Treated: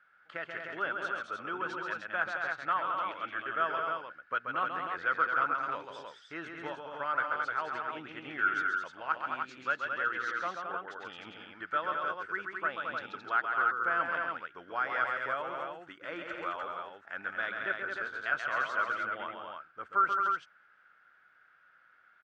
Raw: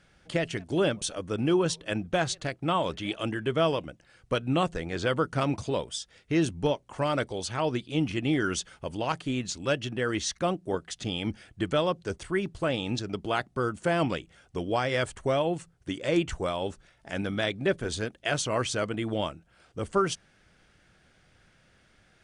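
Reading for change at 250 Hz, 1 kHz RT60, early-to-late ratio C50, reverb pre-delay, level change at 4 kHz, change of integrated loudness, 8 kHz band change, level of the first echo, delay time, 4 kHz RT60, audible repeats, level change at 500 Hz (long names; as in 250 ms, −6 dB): −19.0 dB, no reverb audible, no reverb audible, no reverb audible, −13.5 dB, −3.5 dB, below −20 dB, −5.5 dB, 134 ms, no reverb audible, 3, −12.5 dB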